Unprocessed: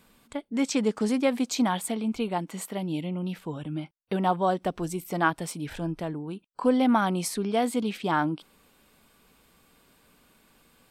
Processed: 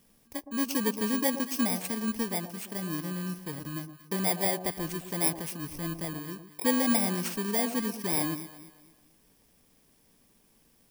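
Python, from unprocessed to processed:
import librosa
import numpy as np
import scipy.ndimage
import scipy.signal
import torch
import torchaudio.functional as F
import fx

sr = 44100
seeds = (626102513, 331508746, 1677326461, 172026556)

y = fx.bit_reversed(x, sr, seeds[0], block=32)
y = fx.echo_alternate(y, sr, ms=115, hz=1000.0, feedback_pct=58, wet_db=-10.0)
y = F.gain(torch.from_numpy(y), -3.5).numpy()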